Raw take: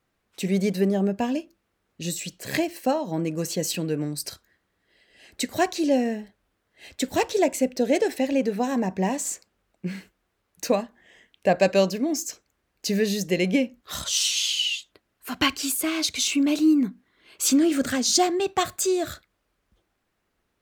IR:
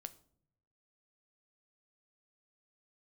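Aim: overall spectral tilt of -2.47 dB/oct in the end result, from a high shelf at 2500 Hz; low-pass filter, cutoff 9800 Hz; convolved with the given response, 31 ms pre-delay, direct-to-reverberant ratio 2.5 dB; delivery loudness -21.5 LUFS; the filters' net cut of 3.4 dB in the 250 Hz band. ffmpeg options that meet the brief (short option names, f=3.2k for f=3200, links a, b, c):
-filter_complex "[0:a]lowpass=9.8k,equalizer=f=250:t=o:g=-4.5,highshelf=f=2.5k:g=4.5,asplit=2[a][b];[1:a]atrim=start_sample=2205,adelay=31[c];[b][c]afir=irnorm=-1:irlink=0,volume=2.5dB[d];[a][d]amix=inputs=2:normalize=0,volume=1dB"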